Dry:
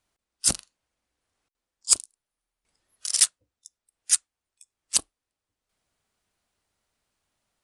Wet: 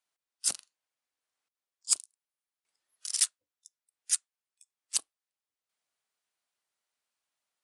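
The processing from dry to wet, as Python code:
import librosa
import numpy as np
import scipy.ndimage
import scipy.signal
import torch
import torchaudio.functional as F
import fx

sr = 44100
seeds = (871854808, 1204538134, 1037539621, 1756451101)

y = fx.highpass(x, sr, hz=930.0, slope=6)
y = y * librosa.db_to_amplitude(-7.0)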